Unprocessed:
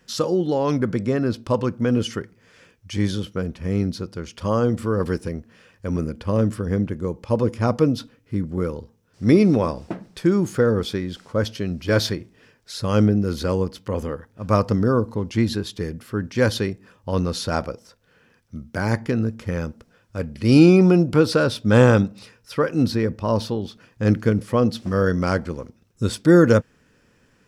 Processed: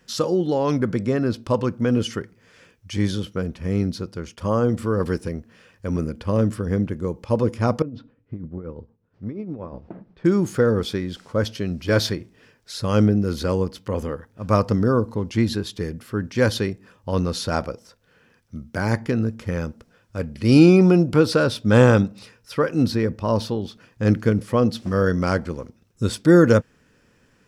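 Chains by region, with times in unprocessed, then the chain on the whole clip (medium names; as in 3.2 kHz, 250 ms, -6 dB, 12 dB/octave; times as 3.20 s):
4.06–4.69 s: expander -46 dBFS + dynamic bell 4 kHz, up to -6 dB, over -47 dBFS, Q 1.1
7.82–10.25 s: compression 12:1, threshold -23 dBFS + tremolo triangle 8.4 Hz, depth 65% + tape spacing loss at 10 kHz 41 dB
whole clip: none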